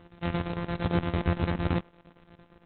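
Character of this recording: a buzz of ramps at a fixed pitch in blocks of 256 samples; chopped level 8.8 Hz, depth 65%, duty 70%; Opus

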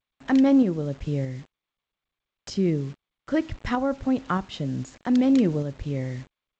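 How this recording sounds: a quantiser's noise floor 8-bit, dither none; tremolo saw up 1.6 Hz, depth 40%; G.722

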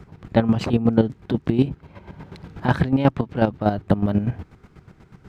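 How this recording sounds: chopped level 8.2 Hz, depth 65%, duty 30%

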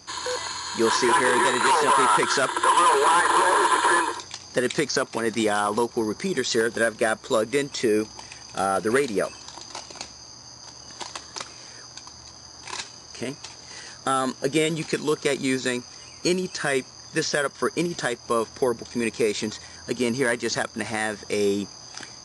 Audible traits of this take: noise floor -45 dBFS; spectral tilt -3.0 dB/octave

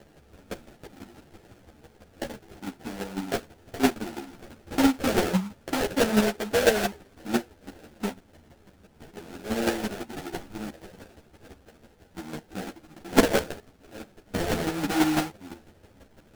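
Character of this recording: chopped level 6 Hz, depth 60%, duty 15%; aliases and images of a low sample rate 1.1 kHz, jitter 20%; a shimmering, thickened sound

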